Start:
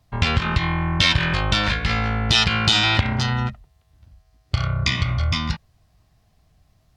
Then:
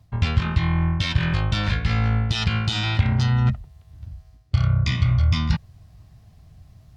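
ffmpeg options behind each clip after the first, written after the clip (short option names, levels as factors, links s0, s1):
-af "areverse,acompressor=threshold=0.0355:ratio=5,areverse,equalizer=f=100:w=0.61:g=11,volume=1.5"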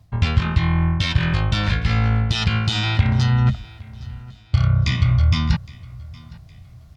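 -af "aecho=1:1:813|1626|2439:0.0794|0.0286|0.0103,volume=1.33"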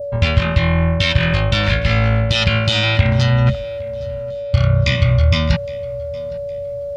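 -af "aeval=exprs='val(0)+0.0501*sin(2*PI*570*n/s)':c=same,acompressor=mode=upward:threshold=0.0501:ratio=2.5,adynamicequalizer=threshold=0.00891:dfrequency=2500:dqfactor=1.2:tfrequency=2500:tqfactor=1.2:attack=5:release=100:ratio=0.375:range=3:mode=boostabove:tftype=bell,volume=1.33"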